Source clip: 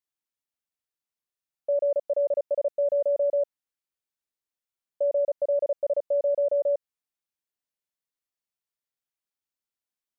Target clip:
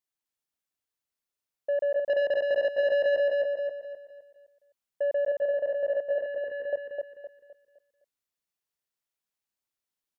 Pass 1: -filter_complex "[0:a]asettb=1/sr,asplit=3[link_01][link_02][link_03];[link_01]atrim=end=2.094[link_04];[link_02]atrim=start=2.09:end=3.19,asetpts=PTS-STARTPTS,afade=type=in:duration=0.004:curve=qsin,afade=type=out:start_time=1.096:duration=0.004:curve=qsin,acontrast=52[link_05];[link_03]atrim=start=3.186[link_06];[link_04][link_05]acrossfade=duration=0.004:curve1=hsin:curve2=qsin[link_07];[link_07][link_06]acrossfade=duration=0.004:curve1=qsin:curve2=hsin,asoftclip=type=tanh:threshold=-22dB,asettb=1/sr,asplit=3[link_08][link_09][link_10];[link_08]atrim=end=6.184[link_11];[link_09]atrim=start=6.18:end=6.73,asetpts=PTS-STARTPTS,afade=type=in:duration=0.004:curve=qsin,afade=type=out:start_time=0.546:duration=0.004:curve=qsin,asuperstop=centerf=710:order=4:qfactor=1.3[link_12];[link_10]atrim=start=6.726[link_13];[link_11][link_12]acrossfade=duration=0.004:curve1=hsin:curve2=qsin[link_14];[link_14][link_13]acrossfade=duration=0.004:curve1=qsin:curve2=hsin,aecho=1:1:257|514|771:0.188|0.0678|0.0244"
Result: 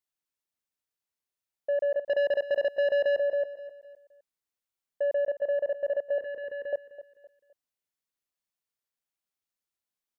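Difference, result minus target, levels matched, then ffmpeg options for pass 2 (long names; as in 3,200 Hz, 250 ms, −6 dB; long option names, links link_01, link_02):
echo-to-direct −11 dB
-filter_complex "[0:a]asettb=1/sr,asplit=3[link_01][link_02][link_03];[link_01]atrim=end=2.094[link_04];[link_02]atrim=start=2.09:end=3.19,asetpts=PTS-STARTPTS,afade=type=in:duration=0.004:curve=qsin,afade=type=out:start_time=1.096:duration=0.004:curve=qsin,acontrast=52[link_05];[link_03]atrim=start=3.186[link_06];[link_04][link_05]acrossfade=duration=0.004:curve1=hsin:curve2=qsin[link_07];[link_07][link_06]acrossfade=duration=0.004:curve1=qsin:curve2=hsin,asoftclip=type=tanh:threshold=-22dB,asettb=1/sr,asplit=3[link_08][link_09][link_10];[link_08]atrim=end=6.184[link_11];[link_09]atrim=start=6.18:end=6.73,asetpts=PTS-STARTPTS,afade=type=in:duration=0.004:curve=qsin,afade=type=out:start_time=0.546:duration=0.004:curve=qsin,asuperstop=centerf=710:order=4:qfactor=1.3[link_12];[link_10]atrim=start=6.726[link_13];[link_11][link_12]acrossfade=duration=0.004:curve1=hsin:curve2=qsin[link_14];[link_14][link_13]acrossfade=duration=0.004:curve1=qsin:curve2=hsin,aecho=1:1:257|514|771|1028|1285:0.668|0.241|0.0866|0.0312|0.0112"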